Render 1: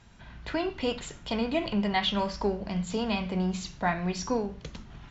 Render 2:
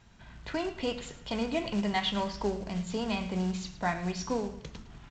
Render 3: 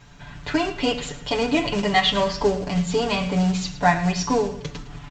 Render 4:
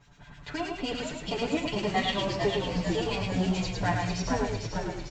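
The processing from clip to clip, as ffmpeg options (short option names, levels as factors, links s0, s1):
-af "aresample=16000,acrusher=bits=5:mode=log:mix=0:aa=0.000001,aresample=44100,aecho=1:1:108|216|324|432:0.168|0.0688|0.0282|0.0116,volume=0.708"
-af "aecho=1:1:6.9:0.96,volume=2.66"
-filter_complex "[0:a]asplit=2[s0][s1];[s1]aecho=0:1:108:0.447[s2];[s0][s2]amix=inputs=2:normalize=0,acrossover=split=1400[s3][s4];[s3]aeval=exprs='val(0)*(1-0.7/2+0.7/2*cos(2*PI*9.7*n/s))':c=same[s5];[s4]aeval=exprs='val(0)*(1-0.7/2-0.7/2*cos(2*PI*9.7*n/s))':c=same[s6];[s5][s6]amix=inputs=2:normalize=0,asplit=2[s7][s8];[s8]asplit=8[s9][s10][s11][s12][s13][s14][s15][s16];[s9]adelay=449,afreqshift=-71,volume=0.562[s17];[s10]adelay=898,afreqshift=-142,volume=0.339[s18];[s11]adelay=1347,afreqshift=-213,volume=0.202[s19];[s12]adelay=1796,afreqshift=-284,volume=0.122[s20];[s13]adelay=2245,afreqshift=-355,volume=0.0733[s21];[s14]adelay=2694,afreqshift=-426,volume=0.0437[s22];[s15]adelay=3143,afreqshift=-497,volume=0.0263[s23];[s16]adelay=3592,afreqshift=-568,volume=0.0157[s24];[s17][s18][s19][s20][s21][s22][s23][s24]amix=inputs=8:normalize=0[s25];[s7][s25]amix=inputs=2:normalize=0,volume=0.447"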